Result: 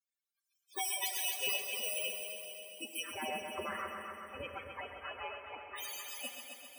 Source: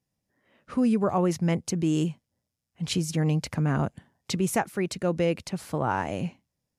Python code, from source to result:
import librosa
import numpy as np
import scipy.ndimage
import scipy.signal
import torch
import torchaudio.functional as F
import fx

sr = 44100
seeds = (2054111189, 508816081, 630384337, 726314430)

y = fx.bit_reversed(x, sr, seeds[0], block=16)
y = scipy.signal.sosfilt(scipy.signal.butter(4, 82.0, 'highpass', fs=sr, output='sos'), y)
y = fx.spec_gate(y, sr, threshold_db=-25, keep='weak')
y = fx.lowpass(y, sr, hz=1900.0, slope=12, at=(3.02, 5.76), fade=0.02)
y = y + 0.32 * np.pad(y, (int(5.1 * sr / 1000.0), 0))[:len(y)]
y = fx.spec_topn(y, sr, count=16)
y = fx.echo_heads(y, sr, ms=131, heads='first and second', feedback_pct=62, wet_db=-10.0)
y = fx.rev_plate(y, sr, seeds[1], rt60_s=3.4, hf_ratio=0.95, predelay_ms=0, drr_db=7.5)
y = y * librosa.db_to_amplitude(8.0)